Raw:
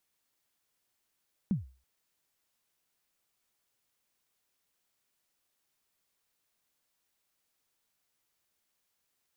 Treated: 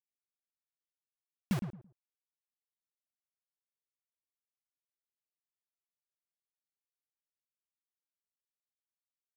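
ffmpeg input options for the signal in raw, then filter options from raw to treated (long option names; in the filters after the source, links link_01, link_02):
-f lavfi -i "aevalsrc='0.0794*pow(10,-3*t/0.36)*sin(2*PI*(220*0.144/log(64/220)*(exp(log(64/220)*min(t,0.144)/0.144)-1)+64*max(t-0.144,0)))':duration=0.33:sample_rate=44100"
-filter_complex "[0:a]acrusher=bits=5:mix=0:aa=0.000001,asplit=2[link_01][link_02];[link_02]adelay=111,lowpass=frequency=940:poles=1,volume=-7dB,asplit=2[link_03][link_04];[link_04]adelay=111,lowpass=frequency=940:poles=1,volume=0.24,asplit=2[link_05][link_06];[link_06]adelay=111,lowpass=frequency=940:poles=1,volume=0.24[link_07];[link_01][link_03][link_05][link_07]amix=inputs=4:normalize=0"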